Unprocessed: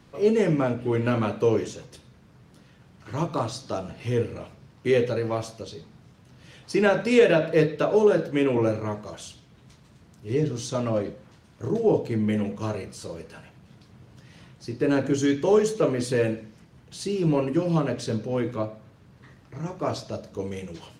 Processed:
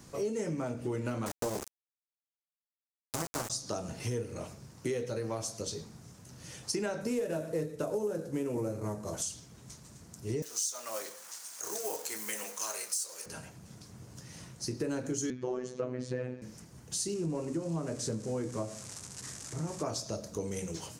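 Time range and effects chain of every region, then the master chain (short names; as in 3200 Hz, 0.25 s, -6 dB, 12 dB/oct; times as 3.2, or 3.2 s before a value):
1.26–3.5 sample gate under -25.5 dBFS + Doppler distortion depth 0.7 ms
7.01–9.22 CVSD 64 kbps + tilt shelf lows +4.5 dB, about 1200 Hz
10.42–13.26 G.711 law mismatch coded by mu + HPF 1000 Hz + high shelf 5900 Hz +9.5 dB
15.3–16.42 LPF 2700 Hz + robotiser 126 Hz
17.14–19.83 switching spikes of -26 dBFS + LPF 8600 Hz 24 dB/oct + high shelf 2500 Hz -11.5 dB
whole clip: resonant high shelf 4700 Hz +11 dB, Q 1.5; compressor 6:1, threshold -32 dBFS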